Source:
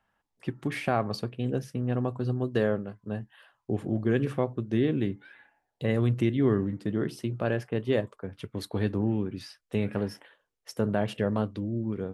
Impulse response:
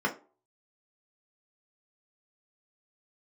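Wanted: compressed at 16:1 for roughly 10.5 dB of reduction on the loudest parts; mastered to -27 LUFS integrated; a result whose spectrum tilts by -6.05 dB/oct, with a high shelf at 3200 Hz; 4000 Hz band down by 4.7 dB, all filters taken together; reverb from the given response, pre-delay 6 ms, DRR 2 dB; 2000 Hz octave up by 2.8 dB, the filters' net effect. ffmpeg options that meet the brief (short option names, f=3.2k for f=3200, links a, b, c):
-filter_complex "[0:a]equalizer=f=2k:t=o:g=6,highshelf=f=3.2k:g=-4.5,equalizer=f=4k:t=o:g=-5.5,acompressor=threshold=-30dB:ratio=16,asplit=2[a][b];[1:a]atrim=start_sample=2205,adelay=6[c];[b][c]afir=irnorm=-1:irlink=0,volume=-12dB[d];[a][d]amix=inputs=2:normalize=0,volume=7.5dB"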